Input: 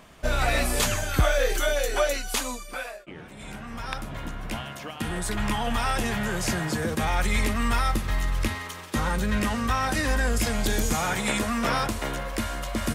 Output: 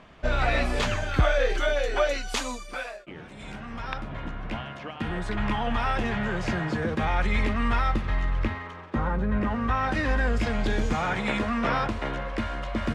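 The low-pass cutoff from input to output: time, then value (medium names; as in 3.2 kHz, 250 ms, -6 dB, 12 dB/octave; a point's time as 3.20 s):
1.99 s 3.5 kHz
2.41 s 6.4 kHz
3.34 s 6.4 kHz
4.07 s 2.9 kHz
8.02 s 2.9 kHz
9.30 s 1.2 kHz
9.96 s 2.9 kHz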